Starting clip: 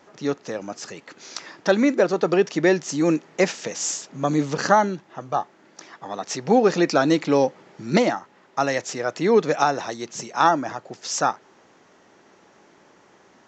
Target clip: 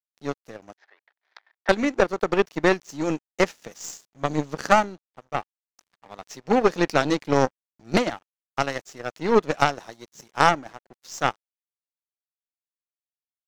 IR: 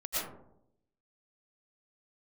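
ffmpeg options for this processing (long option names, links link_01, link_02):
-filter_complex "[0:a]aeval=exprs='sgn(val(0))*max(abs(val(0))-0.0133,0)':channel_layout=same,aeval=exprs='0.708*(cos(1*acos(clip(val(0)/0.708,-1,1)))-cos(1*PI/2))+0.141*(cos(4*acos(clip(val(0)/0.708,-1,1)))-cos(4*PI/2))+0.0398*(cos(6*acos(clip(val(0)/0.708,-1,1)))-cos(6*PI/2))+0.0708*(cos(7*acos(clip(val(0)/0.708,-1,1)))-cos(7*PI/2))':channel_layout=same,asettb=1/sr,asplit=3[link_01][link_02][link_03];[link_01]atrim=end=0.764[link_04];[link_02]atrim=start=0.76:end=1.69,asetpts=PTS-STARTPTS,afade=type=in:duration=0.004:curve=qsin,afade=type=out:start_time=0.926:duration=0.004:curve=qsin,highpass=frequency=480:width=0.5412,highpass=frequency=480:width=1.3066,equalizer=frequency=510:width_type=q:width=4:gain=-9,equalizer=frequency=780:width_type=q:width=4:gain=3,equalizer=frequency=1200:width_type=q:width=4:gain=-4,equalizer=frequency=1800:width_type=q:width=4:gain=8,equalizer=frequency=2800:width_type=q:width=4:gain=-9,lowpass=frequency=3300:width=0.5412,lowpass=frequency=3300:width=1.3066[link_05];[link_03]atrim=start=1.686[link_06];[link_04][link_05]acrossfade=duration=0.004:curve1=hsin:curve2=qsin[link_07];[link_07][link_06]acrossfade=duration=0.004:curve1=qsin:curve2=hsin"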